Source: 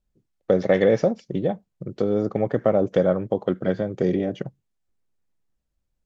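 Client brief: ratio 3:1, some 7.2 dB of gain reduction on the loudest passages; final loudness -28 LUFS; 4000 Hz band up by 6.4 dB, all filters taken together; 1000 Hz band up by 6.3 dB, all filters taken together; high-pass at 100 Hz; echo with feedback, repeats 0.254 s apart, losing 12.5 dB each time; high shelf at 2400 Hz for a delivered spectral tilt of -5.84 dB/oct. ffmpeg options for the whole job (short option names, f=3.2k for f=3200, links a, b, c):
-af "highpass=100,equalizer=f=1k:t=o:g=9,highshelf=f=2.4k:g=3.5,equalizer=f=4k:t=o:g=4.5,acompressor=threshold=-21dB:ratio=3,aecho=1:1:254|508|762:0.237|0.0569|0.0137,volume=-1.5dB"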